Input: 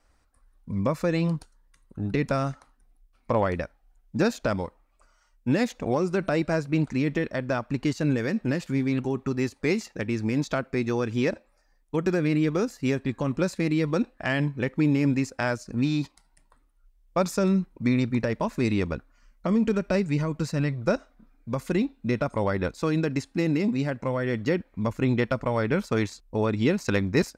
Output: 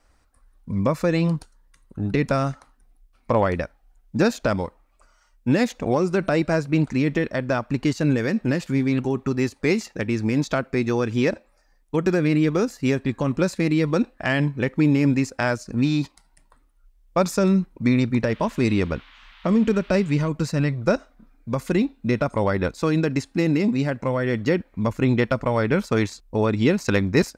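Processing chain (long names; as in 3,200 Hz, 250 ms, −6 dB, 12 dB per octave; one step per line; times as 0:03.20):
0:18.22–0:20.28: noise in a band 920–3,600 Hz −55 dBFS
level +4 dB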